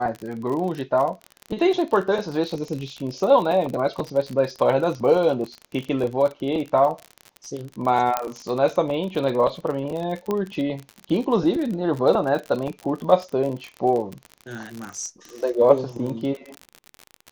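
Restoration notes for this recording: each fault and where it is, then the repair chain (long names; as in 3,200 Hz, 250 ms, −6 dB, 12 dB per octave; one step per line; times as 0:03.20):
surface crackle 45 per second −27 dBFS
0:08.17: click −7 dBFS
0:10.31: click −13 dBFS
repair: click removal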